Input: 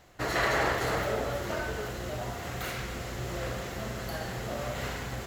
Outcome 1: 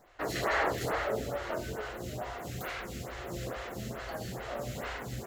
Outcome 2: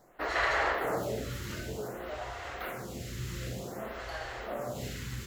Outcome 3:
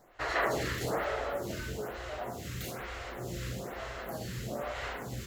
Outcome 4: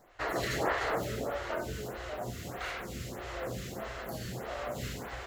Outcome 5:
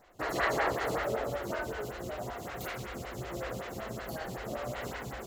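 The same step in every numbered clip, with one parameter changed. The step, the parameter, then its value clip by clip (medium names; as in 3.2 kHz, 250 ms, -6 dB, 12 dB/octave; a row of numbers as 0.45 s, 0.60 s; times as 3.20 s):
lamp-driven phase shifter, rate: 2.3 Hz, 0.54 Hz, 1.1 Hz, 1.6 Hz, 5.3 Hz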